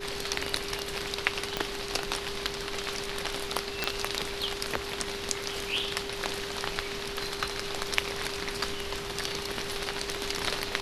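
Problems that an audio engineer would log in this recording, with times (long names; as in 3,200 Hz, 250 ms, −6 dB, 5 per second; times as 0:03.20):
whistle 400 Hz −38 dBFS
0:01.57: click −12 dBFS
0:03.84: click −10 dBFS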